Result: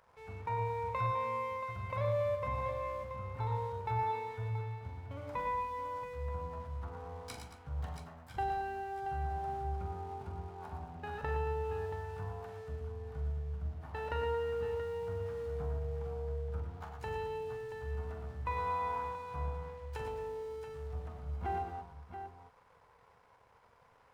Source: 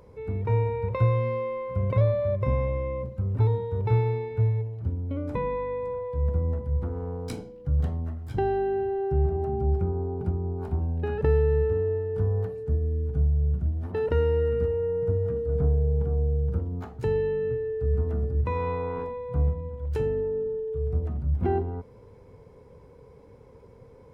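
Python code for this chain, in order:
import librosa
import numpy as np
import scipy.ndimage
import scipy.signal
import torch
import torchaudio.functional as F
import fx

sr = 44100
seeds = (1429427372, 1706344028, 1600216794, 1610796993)

y = np.sign(x) * np.maximum(np.abs(x) - 10.0 ** (-54.5 / 20.0), 0.0)
y = fx.low_shelf_res(y, sr, hz=570.0, db=-12.5, q=1.5)
y = fx.echo_multitap(y, sr, ms=(43, 99, 116, 225, 679), db=(-8.5, -10.5, -7.5, -13.5, -9.0))
y = y * librosa.db_to_amplitude(-4.5)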